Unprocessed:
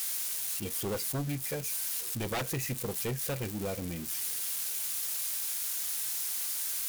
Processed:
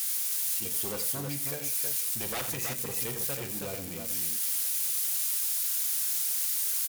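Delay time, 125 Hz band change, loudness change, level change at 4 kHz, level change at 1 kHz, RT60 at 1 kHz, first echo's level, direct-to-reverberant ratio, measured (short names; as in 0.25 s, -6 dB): 42 ms, -5.0 dB, +4.0 dB, +2.5 dB, -1.0 dB, none, -11.5 dB, none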